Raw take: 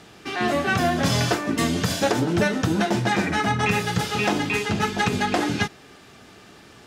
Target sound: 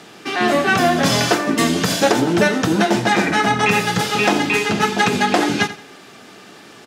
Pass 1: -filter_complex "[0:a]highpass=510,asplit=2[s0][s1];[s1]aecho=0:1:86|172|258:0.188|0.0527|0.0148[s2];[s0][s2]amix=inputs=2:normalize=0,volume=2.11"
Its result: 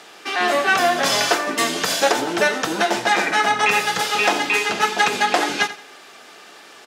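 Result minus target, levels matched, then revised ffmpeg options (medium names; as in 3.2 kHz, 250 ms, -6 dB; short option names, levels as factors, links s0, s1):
250 Hz band -8.5 dB
-filter_complex "[0:a]highpass=180,asplit=2[s0][s1];[s1]aecho=0:1:86|172|258:0.188|0.0527|0.0148[s2];[s0][s2]amix=inputs=2:normalize=0,volume=2.11"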